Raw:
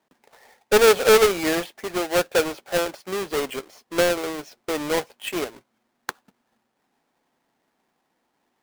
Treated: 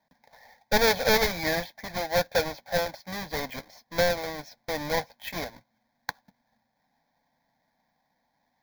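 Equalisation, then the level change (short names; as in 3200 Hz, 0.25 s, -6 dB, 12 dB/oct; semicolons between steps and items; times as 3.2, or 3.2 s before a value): low shelf 280 Hz +4.5 dB; fixed phaser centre 1900 Hz, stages 8; 0.0 dB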